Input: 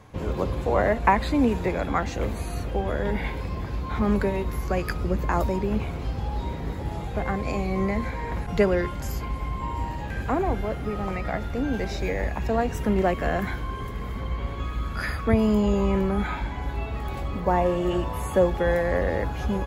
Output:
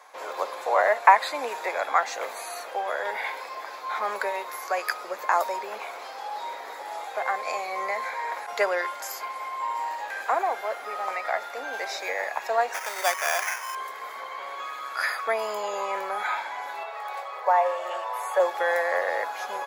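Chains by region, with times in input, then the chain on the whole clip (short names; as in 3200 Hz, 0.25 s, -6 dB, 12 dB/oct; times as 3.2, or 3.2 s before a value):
12.74–13.75 HPF 930 Hz 6 dB/oct + high shelf 2100 Hz +8 dB + sample-rate reducer 4100 Hz
16.83–18.4 steep high-pass 400 Hz 72 dB/oct + high shelf 4100 Hz -7.5 dB
whole clip: HPF 640 Hz 24 dB/oct; bell 2900 Hz -7 dB 0.36 oct; gain +5 dB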